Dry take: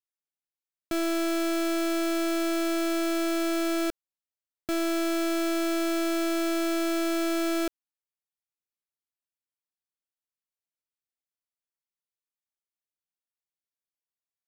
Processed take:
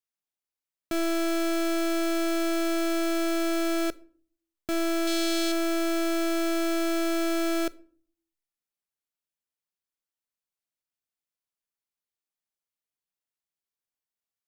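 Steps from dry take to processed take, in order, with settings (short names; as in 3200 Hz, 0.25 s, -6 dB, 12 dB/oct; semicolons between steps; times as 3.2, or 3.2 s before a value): 5.07–5.52 graphic EQ 1000/4000/8000 Hz -5/+9/+4 dB; reverb RT60 0.50 s, pre-delay 5 ms, DRR 17 dB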